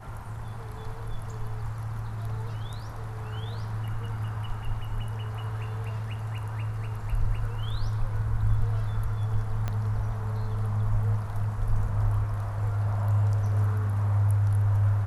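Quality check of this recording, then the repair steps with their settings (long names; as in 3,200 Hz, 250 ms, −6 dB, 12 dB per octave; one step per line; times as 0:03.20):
0:09.68: click −17 dBFS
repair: click removal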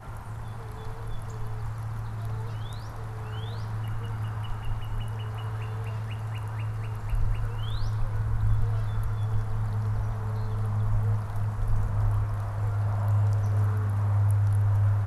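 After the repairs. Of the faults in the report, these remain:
0:09.68: click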